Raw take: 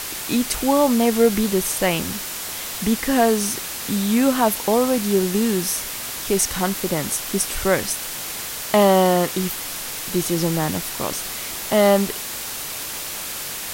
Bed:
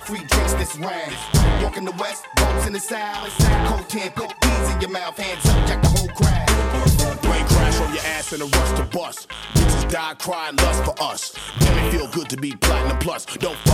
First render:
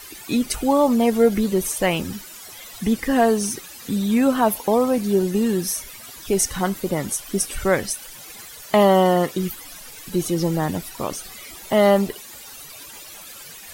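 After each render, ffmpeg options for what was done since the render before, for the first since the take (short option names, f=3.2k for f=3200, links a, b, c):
-af "afftdn=nr=15:nf=-30"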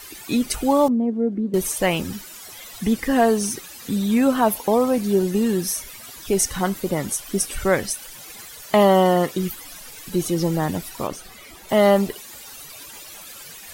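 -filter_complex "[0:a]asettb=1/sr,asplit=3[a][b][c];[a]atrim=end=0.884[d];[b]atrim=start=0.88:end=1.54,asetpts=PTS-STARTPTS,afade=t=in:d=0.004:c=qsin,afade=t=out:st=0.656:d=0.004:c=qsin,bandpass=f=270:t=q:w=2.2[e];[c]atrim=start=1.536[f];[d][e]acrossfade=d=0.004:c1=hsin:c2=qsin[g];[g][f]acrossfade=d=0.004:c1=qsin:c2=hsin,asettb=1/sr,asplit=3[h][i][j];[h]atrim=end=11.074[k];[i]atrim=start=11.07:end=11.69,asetpts=PTS-STARTPTS,afade=t=in:d=0.004:c=qsin,afade=t=out:st=0.616:d=0.004:c=qsin,highshelf=f=3.1k:g=-7.5[l];[j]atrim=start=11.686[m];[k][l]acrossfade=d=0.004:c1=hsin:c2=qsin[n];[n][m]acrossfade=d=0.004:c1=qsin:c2=hsin"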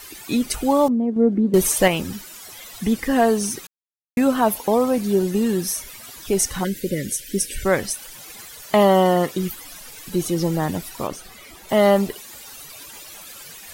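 -filter_complex "[0:a]asettb=1/sr,asplit=3[a][b][c];[a]atrim=end=1.164[d];[b]atrim=start=1.16:end=1.88,asetpts=PTS-STARTPTS,afade=t=in:d=0.004:c=qsin,afade=t=out:st=0.716:d=0.004:c=qsin,acontrast=37[e];[c]atrim=start=1.876[f];[d][e]acrossfade=d=0.004:c1=hsin:c2=qsin[g];[g][f]acrossfade=d=0.004:c1=qsin:c2=hsin,asplit=3[h][i][j];[h]afade=t=out:st=6.63:d=0.02[k];[i]asuperstop=centerf=940:order=12:qfactor=0.93,afade=t=in:st=6.63:d=0.02,afade=t=out:st=7.64:d=0.02[l];[j]afade=t=in:st=7.64:d=0.02[m];[k][l][m]amix=inputs=3:normalize=0,asplit=3[n][o][p];[n]atrim=end=3.67,asetpts=PTS-STARTPTS,afade=t=out:st=3.666:d=0.004:c=hsin[q];[o]atrim=start=3.67:end=4.17,asetpts=PTS-STARTPTS,volume=0[r];[p]atrim=start=4.17,asetpts=PTS-STARTPTS,afade=t=in:d=0.004:c=hsin[s];[q][r][s]concat=n=3:v=0:a=1"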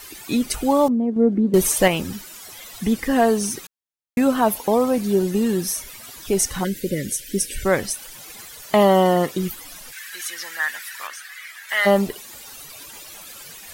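-filter_complex "[0:a]asplit=3[a][b][c];[a]afade=t=out:st=9.91:d=0.02[d];[b]highpass=f=1.7k:t=q:w=5.7,afade=t=in:st=9.91:d=0.02,afade=t=out:st=11.85:d=0.02[e];[c]afade=t=in:st=11.85:d=0.02[f];[d][e][f]amix=inputs=3:normalize=0"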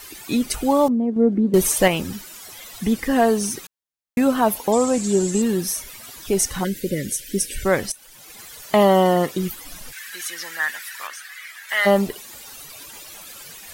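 -filter_complex "[0:a]asettb=1/sr,asplit=3[a][b][c];[a]atrim=end=4.724[d];[b]atrim=start=4.72:end=5.42,asetpts=PTS-STARTPTS,afade=t=in:d=0.004:c=qsin,afade=t=out:st=0.696:d=0.004:c=qsin,lowpass=f=7.5k:t=q:w=10[e];[c]atrim=start=5.416[f];[d][e]acrossfade=d=0.004:c1=hsin:c2=qsin[g];[g][f]acrossfade=d=0.004:c1=qsin:c2=hsin,asettb=1/sr,asplit=3[h][i][j];[h]atrim=end=9.664[k];[i]atrim=start=9.66:end=10.71,asetpts=PTS-STARTPTS,afade=t=in:d=0.004:c=qsin,afade=t=out:st=1.046:d=0.004:c=qsin,lowshelf=f=270:g=9[l];[j]atrim=start=10.706[m];[k][l]acrossfade=d=0.004:c1=hsin:c2=qsin[n];[n][m]acrossfade=d=0.004:c1=qsin:c2=hsin,asplit=2[o][p];[o]atrim=end=7.92,asetpts=PTS-STARTPTS,afade=t=out:st=7.916:d=0.004:c=hsin:silence=0.199526[q];[p]atrim=start=7.92,asetpts=PTS-STARTPTS,afade=t=in:d=0.61:silence=0.199526[r];[q][r]concat=n=2:v=0:a=1"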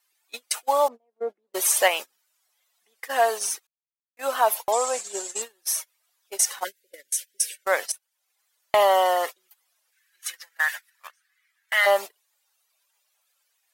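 -af "highpass=f=590:w=0.5412,highpass=f=590:w=1.3066,agate=range=-32dB:threshold=-29dB:ratio=16:detection=peak"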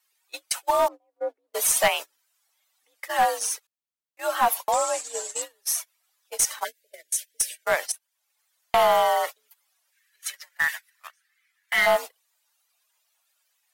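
-af "afreqshift=61,aeval=exprs='clip(val(0),-1,0.158)':c=same"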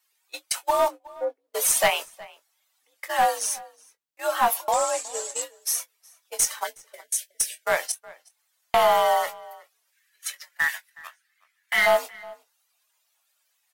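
-filter_complex "[0:a]asplit=2[a][b];[b]adelay=23,volume=-11dB[c];[a][c]amix=inputs=2:normalize=0,asplit=2[d][e];[e]adelay=367.3,volume=-21dB,highshelf=f=4k:g=-8.27[f];[d][f]amix=inputs=2:normalize=0"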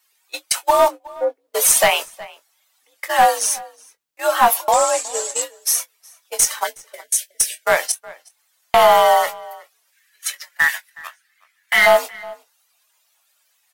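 -af "volume=7.5dB,alimiter=limit=-2dB:level=0:latency=1"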